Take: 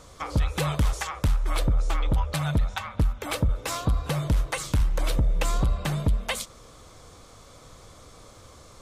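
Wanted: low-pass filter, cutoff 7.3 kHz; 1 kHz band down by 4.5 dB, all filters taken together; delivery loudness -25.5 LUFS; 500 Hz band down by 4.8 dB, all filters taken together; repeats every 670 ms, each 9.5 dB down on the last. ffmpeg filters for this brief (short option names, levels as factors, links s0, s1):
-af "lowpass=7300,equalizer=f=500:t=o:g=-4.5,equalizer=f=1000:t=o:g=-4.5,aecho=1:1:670|1340|2010|2680:0.335|0.111|0.0365|0.012,volume=1.33"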